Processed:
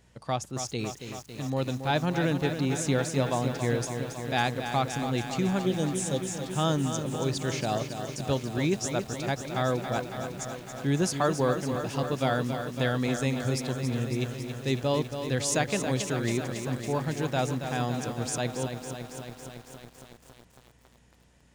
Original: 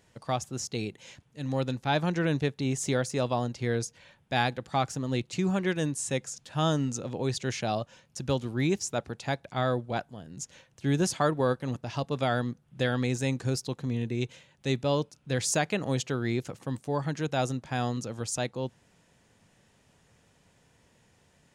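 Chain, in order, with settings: spectral replace 5.64–6.44 s, 880–2900 Hz after; hum 60 Hz, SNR 33 dB; bit-crushed delay 277 ms, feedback 80%, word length 8-bit, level -8 dB

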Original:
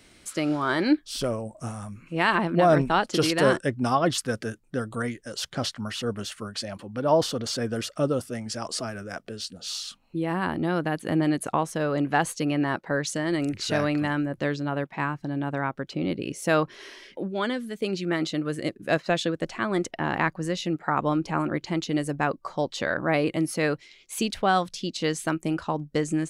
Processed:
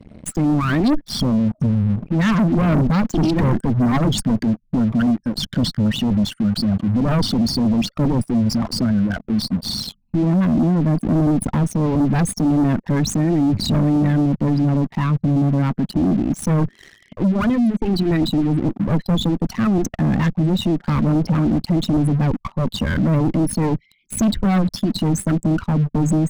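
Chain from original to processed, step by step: resonances exaggerated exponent 3; Chebyshev shaper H 4 -11 dB, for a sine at -9.5 dBFS; resonant low shelf 310 Hz +11.5 dB, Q 3; waveshaping leveller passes 3; peak limiter -10 dBFS, peak gain reduction 8 dB; trim -2.5 dB

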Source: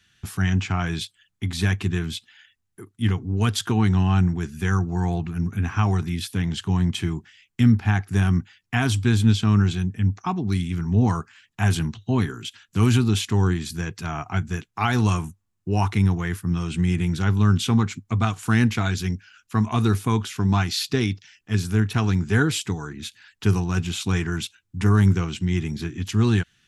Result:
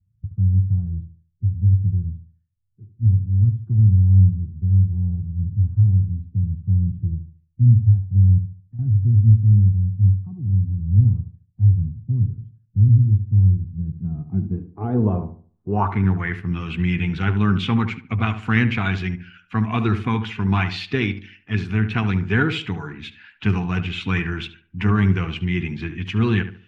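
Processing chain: coarse spectral quantiser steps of 15 dB; 8.38–8.79 s: compression 2.5:1, threshold -40 dBFS, peak gain reduction 14.5 dB; low-pass sweep 110 Hz -> 2.5 kHz, 13.60–16.45 s; filtered feedback delay 73 ms, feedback 33%, low-pass 1.7 kHz, level -10 dB

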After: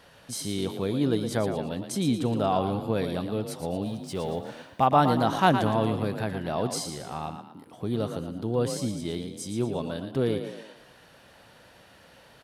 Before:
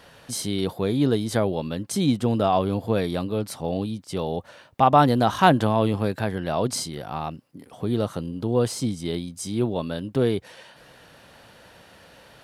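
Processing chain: 3.86–4.86 s: companding laws mixed up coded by mu; frequency-shifting echo 115 ms, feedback 43%, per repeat +34 Hz, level -8.5 dB; trim -4.5 dB

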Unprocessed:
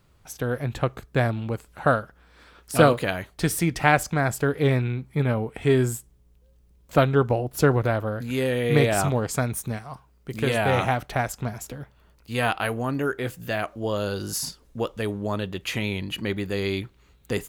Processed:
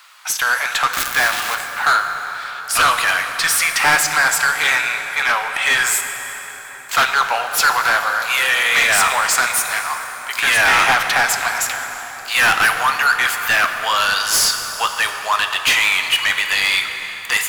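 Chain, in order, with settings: 0.93–1.55 s: zero-crossing glitches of -22.5 dBFS; high-pass 1 kHz 24 dB/octave; gain riding within 3 dB 2 s; overdrive pedal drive 28 dB, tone 7.5 kHz, clips at -5.5 dBFS; plate-style reverb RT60 4.9 s, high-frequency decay 0.6×, DRR 5.5 dB

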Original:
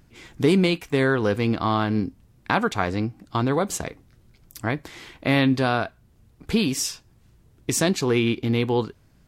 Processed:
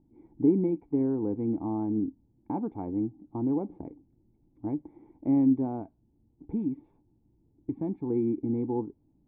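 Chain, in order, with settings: 5.81–8.10 s: dynamic bell 430 Hz, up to -6 dB, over -36 dBFS, Q 0.93; cascade formant filter u; trim +2 dB

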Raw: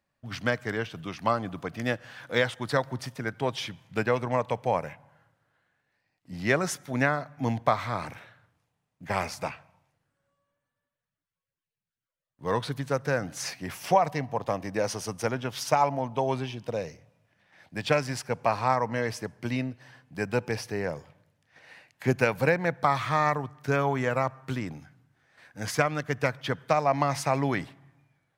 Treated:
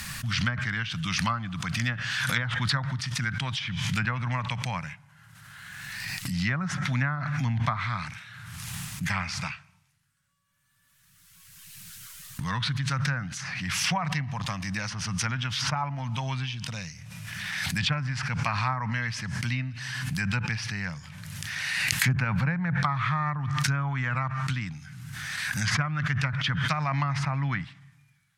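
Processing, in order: FFT filter 180 Hz 0 dB, 430 Hz -28 dB, 1.3 kHz -1 dB, 8.8 kHz +9 dB; low-pass that closes with the level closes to 1.1 kHz, closed at -25 dBFS; swell ahead of each attack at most 23 dB/s; trim +3.5 dB

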